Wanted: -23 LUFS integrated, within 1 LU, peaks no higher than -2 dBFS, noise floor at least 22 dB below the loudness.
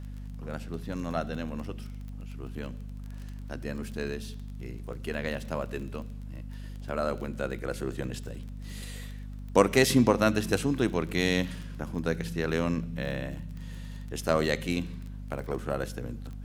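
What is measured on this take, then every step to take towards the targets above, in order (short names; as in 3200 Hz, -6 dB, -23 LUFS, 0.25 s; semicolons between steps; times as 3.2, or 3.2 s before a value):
ticks 21/s; hum 50 Hz; harmonics up to 250 Hz; hum level -37 dBFS; loudness -31.0 LUFS; peak -5.5 dBFS; loudness target -23.0 LUFS
-> de-click; notches 50/100/150/200/250 Hz; gain +8 dB; limiter -2 dBFS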